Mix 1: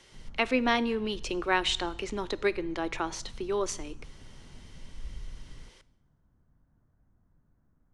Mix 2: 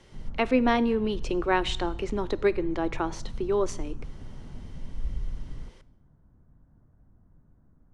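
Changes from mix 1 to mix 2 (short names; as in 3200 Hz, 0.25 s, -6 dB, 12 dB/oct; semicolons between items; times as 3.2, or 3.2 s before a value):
background +3.5 dB; master: add tilt shelf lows +5.5 dB, about 1400 Hz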